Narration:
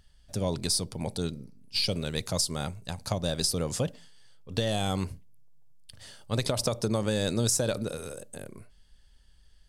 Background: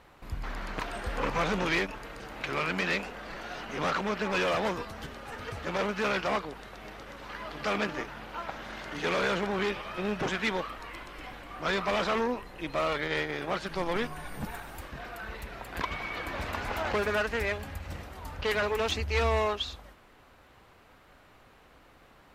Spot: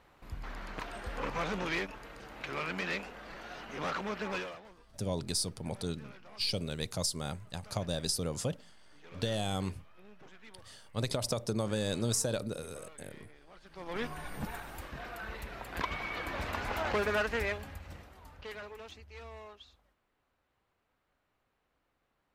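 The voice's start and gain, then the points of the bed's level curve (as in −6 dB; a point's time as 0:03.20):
4.65 s, −5.0 dB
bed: 0:04.34 −6 dB
0:04.65 −25.5 dB
0:13.54 −25.5 dB
0:14.08 −2 dB
0:17.38 −2 dB
0:19.05 −21.5 dB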